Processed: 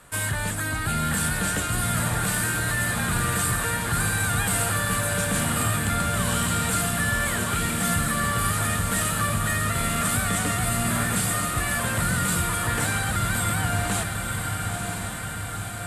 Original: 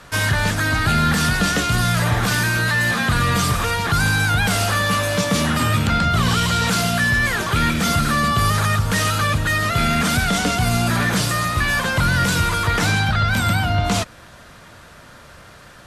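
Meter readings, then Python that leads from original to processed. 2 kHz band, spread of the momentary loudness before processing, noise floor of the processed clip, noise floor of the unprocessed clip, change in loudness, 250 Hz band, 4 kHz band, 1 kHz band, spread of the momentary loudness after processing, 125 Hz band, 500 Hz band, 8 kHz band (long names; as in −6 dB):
−7.0 dB, 2 LU, −31 dBFS, −44 dBFS, −6.0 dB, −6.5 dB, −8.5 dB, −6.5 dB, 4 LU, −6.5 dB, −6.0 dB, +1.5 dB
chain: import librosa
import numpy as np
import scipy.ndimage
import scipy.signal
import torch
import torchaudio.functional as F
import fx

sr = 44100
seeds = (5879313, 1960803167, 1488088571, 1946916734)

y = fx.high_shelf_res(x, sr, hz=6900.0, db=6.5, q=3.0)
y = fx.echo_diffused(y, sr, ms=957, feedback_pct=67, wet_db=-4.5)
y = y * librosa.db_to_amplitude(-8.5)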